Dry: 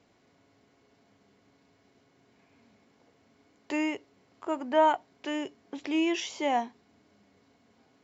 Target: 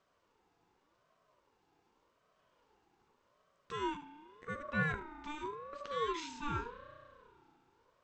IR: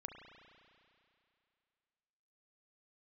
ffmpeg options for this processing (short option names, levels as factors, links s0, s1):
-filter_complex "[0:a]asplit=2[s0][s1];[s1]lowshelf=f=380:t=q:w=1.5:g=10.5[s2];[1:a]atrim=start_sample=2205,adelay=74[s3];[s2][s3]afir=irnorm=-1:irlink=0,volume=0.447[s4];[s0][s4]amix=inputs=2:normalize=0,aeval=exprs='val(0)*sin(2*PI*720*n/s+720*0.2/0.86*sin(2*PI*0.86*n/s))':c=same,volume=0.398"